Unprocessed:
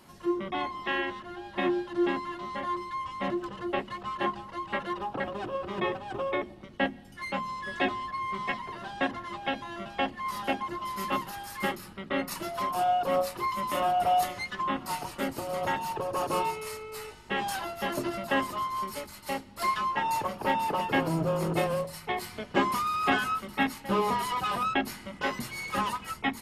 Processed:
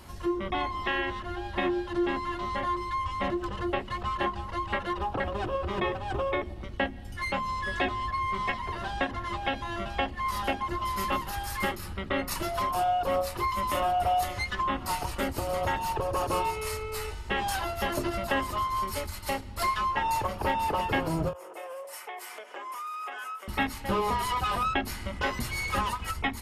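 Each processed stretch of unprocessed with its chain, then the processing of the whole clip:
0:21.33–0:23.48: parametric band 4,200 Hz −12 dB 0.42 octaves + downward compressor, threshold −41 dBFS + high-pass filter 440 Hz 24 dB per octave
whole clip: low shelf with overshoot 110 Hz +12.5 dB, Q 1.5; downward compressor 2 to 1, threshold −34 dBFS; every ending faded ahead of time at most 230 dB per second; level +5.5 dB

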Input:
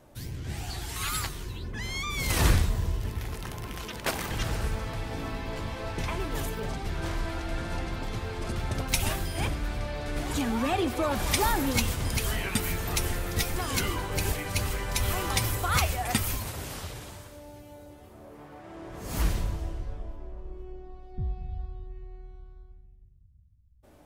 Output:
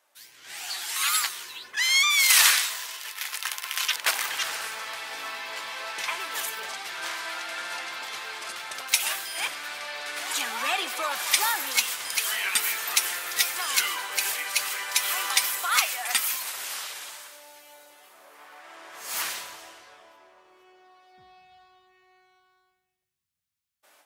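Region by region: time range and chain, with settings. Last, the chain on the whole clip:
0:01.76–0:03.96: tilt shelving filter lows −9 dB, about 630 Hz + downward expander −34 dBFS
whole clip: high-pass filter 1,300 Hz 12 dB per octave; automatic gain control gain up to 11 dB; level −2.5 dB

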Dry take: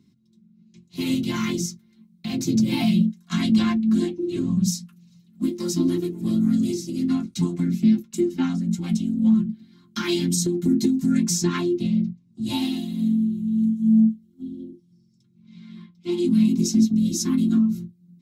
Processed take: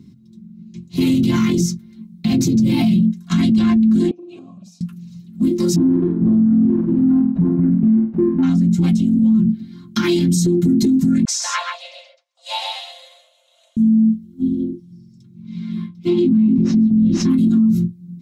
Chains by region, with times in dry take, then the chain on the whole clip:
0:04.11–0:04.81: high-shelf EQ 3,600 Hz +12 dB + downward compressor 4 to 1, threshold −28 dBFS + formant filter a
0:05.76–0:08.43: running median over 41 samples + low-pass filter 1,300 Hz + flutter between parallel walls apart 8.5 metres, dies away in 0.38 s
0:11.25–0:13.77: linear-phase brick-wall high-pass 510 Hz + high-frequency loss of the air 72 metres + single-tap delay 132 ms −4.5 dB
0:15.73–0:17.30: running median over 5 samples + treble cut that deepens with the level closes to 1,700 Hz, closed at −15.5 dBFS + double-tracking delay 19 ms −11 dB
whole clip: low-shelf EQ 400 Hz +10 dB; brickwall limiter −17 dBFS; level +8 dB

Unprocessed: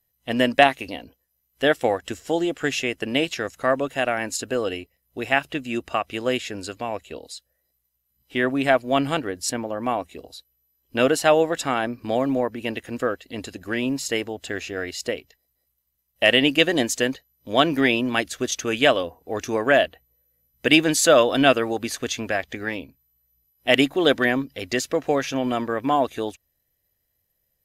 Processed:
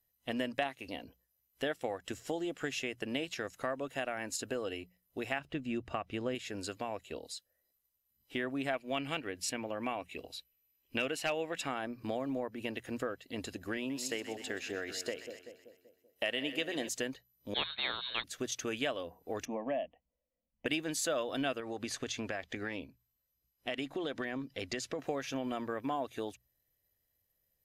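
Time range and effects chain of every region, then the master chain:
0:05.39–0:06.35: low-pass filter 3,500 Hz 6 dB per octave + low-shelf EQ 230 Hz +9.5 dB
0:08.73–0:11.67: parametric band 2,500 Hz +12 dB 0.66 octaves + hard clipping −5.5 dBFS
0:13.77–0:16.89: high-pass filter 190 Hz 6 dB per octave + echo with a time of its own for lows and highs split 800 Hz, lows 192 ms, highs 126 ms, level −12 dB
0:17.54–0:18.24: downward expander −17 dBFS + voice inversion scrambler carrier 4,000 Hz + every bin compressed towards the loudest bin 2 to 1
0:19.45–0:20.66: Butterworth band-reject 4,200 Hz, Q 1.6 + high-frequency loss of the air 290 metres + phaser with its sweep stopped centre 390 Hz, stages 6
0:21.60–0:24.99: low-pass filter 8,600 Hz + downward compressor 3 to 1, threshold −24 dBFS
whole clip: mains-hum notches 60/120/180 Hz; downward compressor 3 to 1, threshold −29 dBFS; level −6 dB

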